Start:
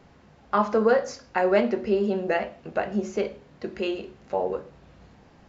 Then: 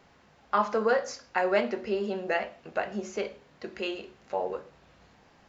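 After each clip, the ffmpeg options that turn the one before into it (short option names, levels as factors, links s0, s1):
-af "lowshelf=f=500:g=-10"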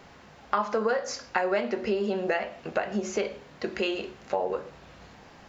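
-af "acompressor=threshold=0.0224:ratio=4,volume=2.66"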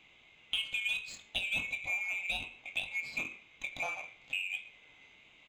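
-filter_complex "[0:a]afftfilt=real='real(if(lt(b,920),b+92*(1-2*mod(floor(b/92),2)),b),0)':imag='imag(if(lt(b,920),b+92*(1-2*mod(floor(b/92),2)),b),0)':win_size=2048:overlap=0.75,asplit=2[s0][s1];[s1]adelay=22,volume=0.282[s2];[s0][s2]amix=inputs=2:normalize=0,adynamicsmooth=sensitivity=5.5:basefreq=4600,volume=0.376"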